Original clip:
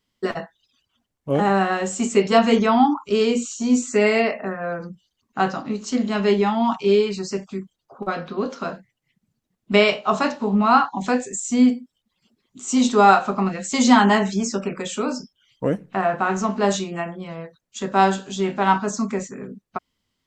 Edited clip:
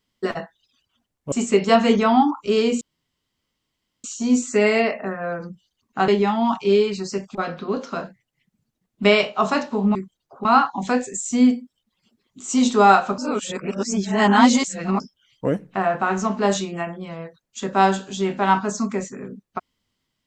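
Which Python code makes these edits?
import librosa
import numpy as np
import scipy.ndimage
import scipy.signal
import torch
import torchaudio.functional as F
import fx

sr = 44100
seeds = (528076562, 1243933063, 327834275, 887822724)

y = fx.edit(x, sr, fx.cut(start_s=1.32, length_s=0.63),
    fx.insert_room_tone(at_s=3.44, length_s=1.23),
    fx.cut(start_s=5.48, length_s=0.79),
    fx.move(start_s=7.54, length_s=0.5, to_s=10.64),
    fx.reverse_span(start_s=13.37, length_s=1.82), tone=tone)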